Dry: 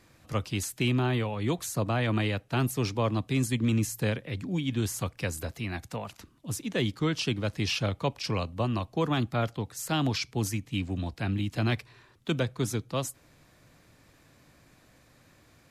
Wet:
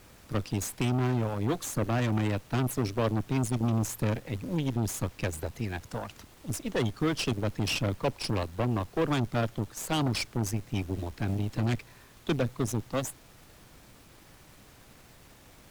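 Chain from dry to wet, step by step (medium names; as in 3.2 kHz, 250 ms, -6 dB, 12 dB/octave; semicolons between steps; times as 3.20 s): resonances exaggerated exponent 1.5; added noise pink -54 dBFS; Chebyshev shaper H 8 -17 dB, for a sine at -15 dBFS; trim -1 dB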